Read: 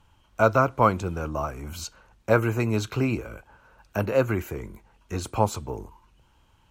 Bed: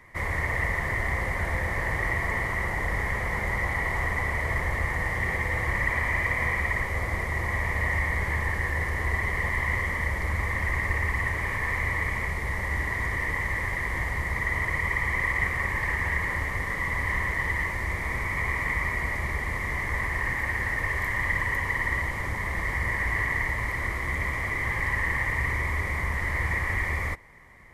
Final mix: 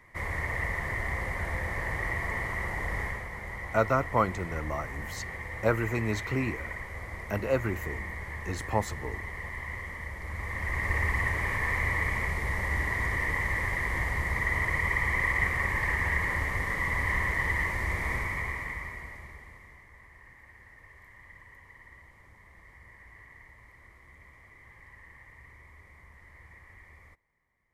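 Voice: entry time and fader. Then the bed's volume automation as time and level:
3.35 s, -5.5 dB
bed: 3.04 s -4.5 dB
3.29 s -11 dB
10.19 s -11 dB
10.98 s -1 dB
18.13 s -1 dB
19.9 s -25.5 dB

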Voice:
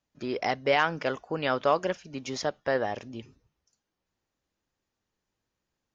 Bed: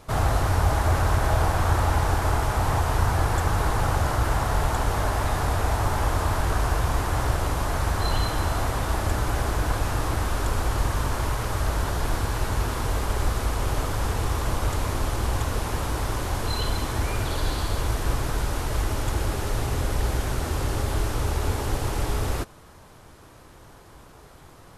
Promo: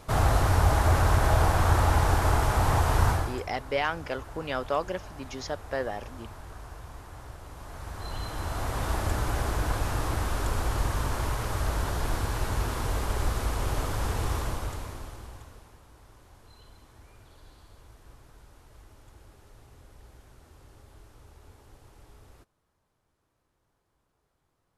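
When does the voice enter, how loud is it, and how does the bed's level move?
3.05 s, -4.0 dB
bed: 3.1 s -0.5 dB
3.49 s -20 dB
7.43 s -20 dB
8.85 s -3.5 dB
14.36 s -3.5 dB
15.8 s -27.5 dB

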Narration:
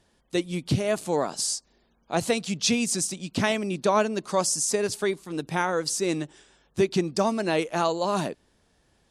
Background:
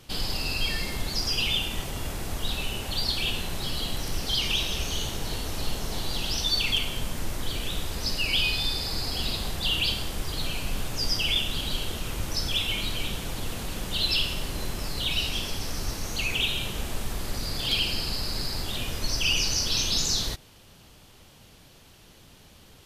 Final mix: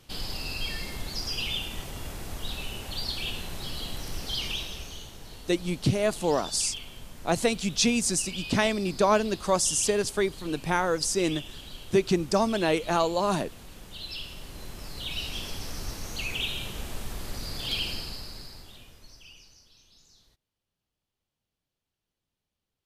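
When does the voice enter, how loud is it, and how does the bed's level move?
5.15 s, 0.0 dB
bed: 4.45 s -5 dB
5.1 s -13.5 dB
14.02 s -13.5 dB
15.48 s -4.5 dB
17.9 s -4.5 dB
19.77 s -34 dB

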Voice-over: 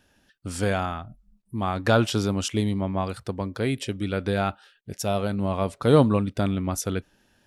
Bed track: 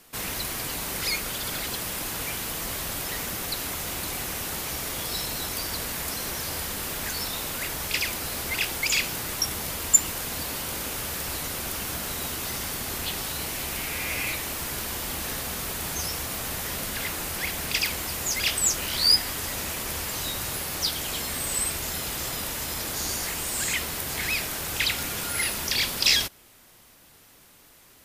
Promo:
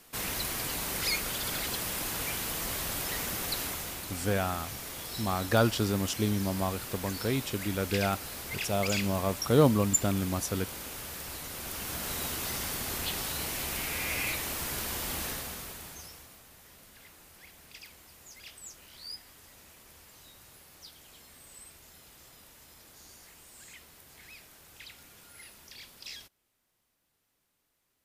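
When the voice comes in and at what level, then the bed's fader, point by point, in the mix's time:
3.65 s, -4.5 dB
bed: 3.61 s -2.5 dB
4.07 s -9 dB
11.46 s -9 dB
12.13 s -3 dB
15.22 s -3 dB
16.46 s -23.5 dB

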